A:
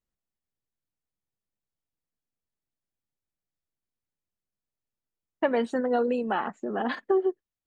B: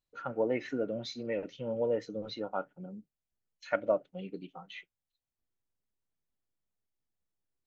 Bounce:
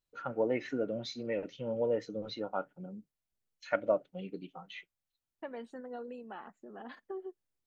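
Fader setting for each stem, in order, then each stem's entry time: -18.0, -0.5 dB; 0.00, 0.00 s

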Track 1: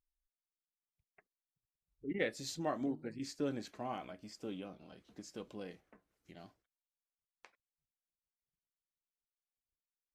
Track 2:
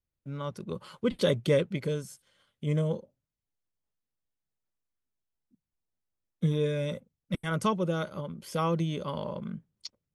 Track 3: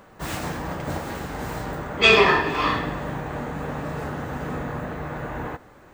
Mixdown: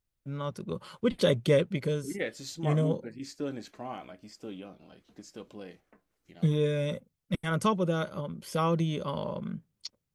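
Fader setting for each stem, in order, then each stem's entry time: +2.0 dB, +1.0 dB, off; 0.00 s, 0.00 s, off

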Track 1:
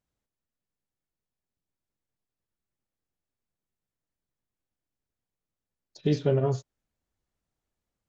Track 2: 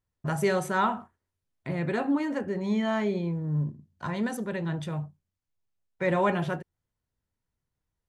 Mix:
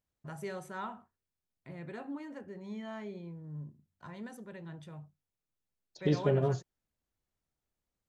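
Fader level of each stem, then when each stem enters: -4.0, -15.0 dB; 0.00, 0.00 s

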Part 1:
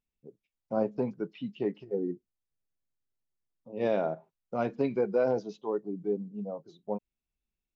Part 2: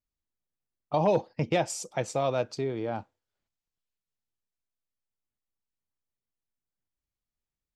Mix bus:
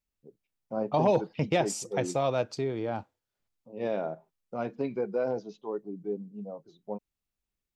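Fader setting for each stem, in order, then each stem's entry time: -3.0, 0.0 dB; 0.00, 0.00 s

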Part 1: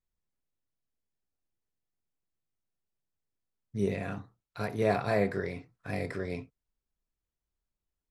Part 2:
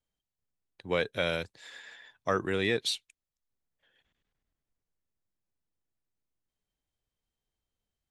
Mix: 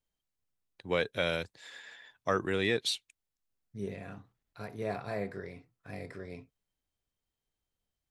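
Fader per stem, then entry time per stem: -8.5, -1.0 dB; 0.00, 0.00 s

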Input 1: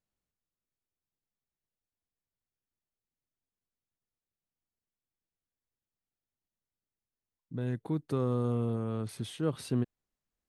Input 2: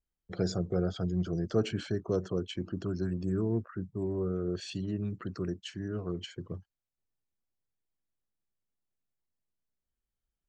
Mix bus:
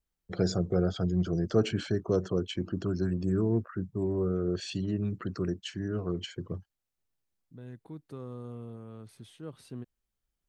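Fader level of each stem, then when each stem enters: -11.5, +3.0 dB; 0.00, 0.00 s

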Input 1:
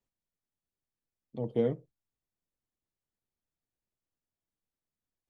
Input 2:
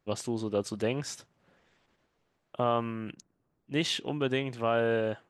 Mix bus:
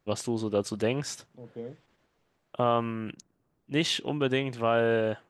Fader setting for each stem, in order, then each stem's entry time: -11.5, +2.5 dB; 0.00, 0.00 s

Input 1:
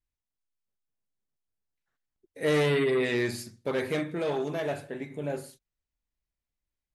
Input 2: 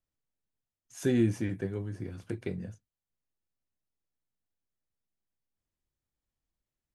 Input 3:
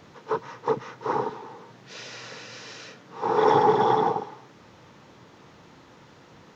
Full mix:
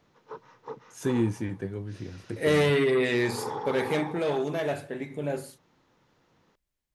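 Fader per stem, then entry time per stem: +2.0, 0.0, -15.0 dB; 0.00, 0.00, 0.00 s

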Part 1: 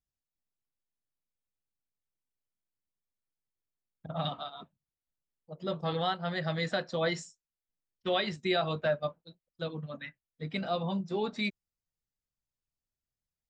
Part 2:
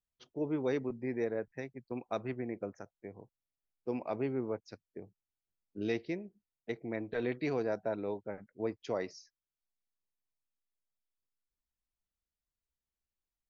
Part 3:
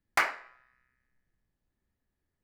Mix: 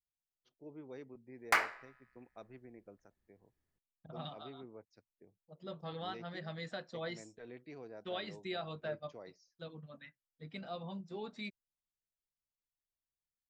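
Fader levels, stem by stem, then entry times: -11.5, -16.5, -3.0 dB; 0.00, 0.25, 1.35 s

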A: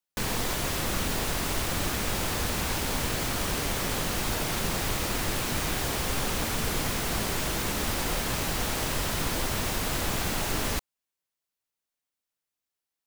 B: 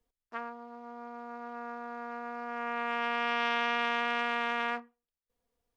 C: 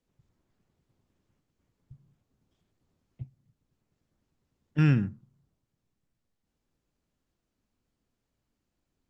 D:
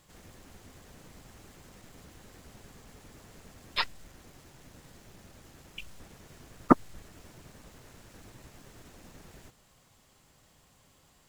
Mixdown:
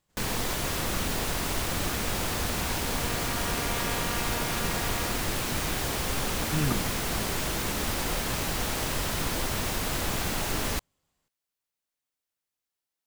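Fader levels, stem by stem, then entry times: -0.5, -6.5, -6.0, -15.5 dB; 0.00, 0.35, 1.75, 0.00 s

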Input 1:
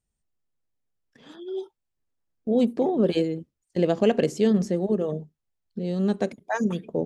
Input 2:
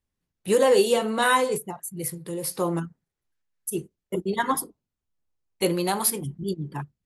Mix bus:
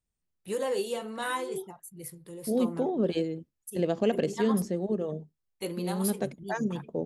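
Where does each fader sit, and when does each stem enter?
-5.5, -11.5 dB; 0.00, 0.00 s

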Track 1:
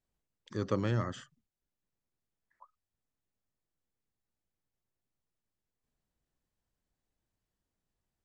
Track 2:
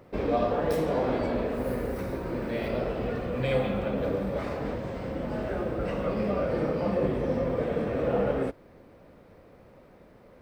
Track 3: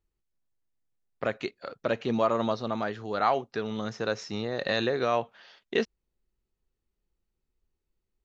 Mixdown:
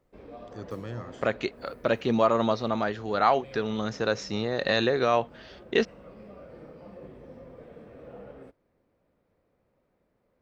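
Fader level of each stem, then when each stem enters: -6.5, -19.0, +3.0 dB; 0.00, 0.00, 0.00 s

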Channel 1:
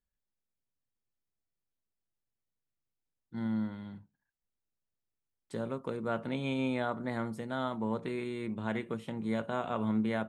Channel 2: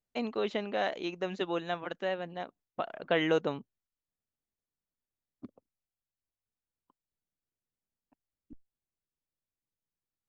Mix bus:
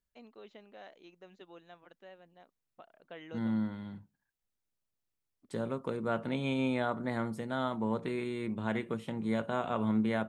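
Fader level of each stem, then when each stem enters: +1.0, -20.0 dB; 0.00, 0.00 s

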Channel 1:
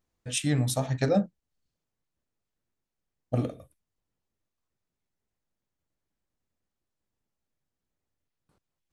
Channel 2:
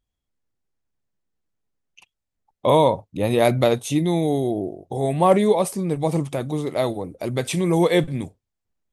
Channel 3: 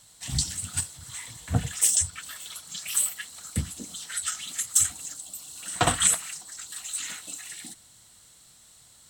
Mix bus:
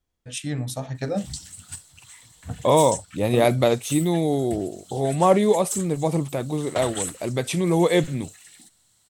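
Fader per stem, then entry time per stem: -2.5, -1.0, -8.5 dB; 0.00, 0.00, 0.95 s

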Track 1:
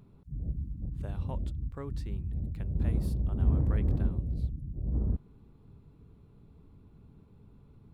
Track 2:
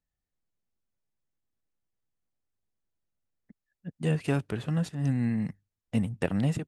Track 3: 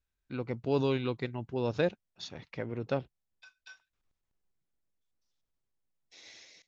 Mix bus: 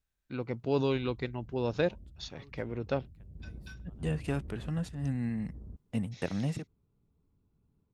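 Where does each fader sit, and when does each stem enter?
-17.0, -5.5, 0.0 dB; 0.60, 0.00, 0.00 s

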